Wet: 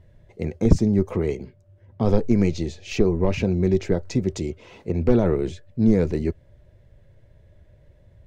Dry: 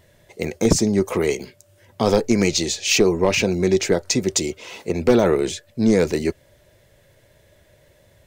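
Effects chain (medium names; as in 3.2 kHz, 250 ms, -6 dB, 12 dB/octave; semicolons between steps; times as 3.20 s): RIAA curve playback; 1.16–3.21 s: tape noise reduction on one side only decoder only; trim -8 dB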